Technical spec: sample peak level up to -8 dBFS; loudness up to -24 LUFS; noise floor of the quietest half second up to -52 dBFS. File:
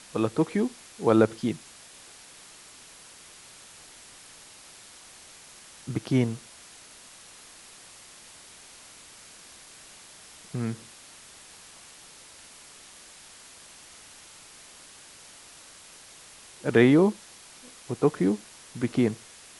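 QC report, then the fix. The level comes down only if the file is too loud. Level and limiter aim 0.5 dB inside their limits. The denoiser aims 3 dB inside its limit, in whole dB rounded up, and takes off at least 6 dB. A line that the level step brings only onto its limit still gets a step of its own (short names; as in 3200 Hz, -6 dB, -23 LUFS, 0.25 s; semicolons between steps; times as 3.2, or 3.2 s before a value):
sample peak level -6.5 dBFS: fail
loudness -26.0 LUFS: OK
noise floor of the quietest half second -50 dBFS: fail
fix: denoiser 6 dB, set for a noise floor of -50 dBFS; limiter -8.5 dBFS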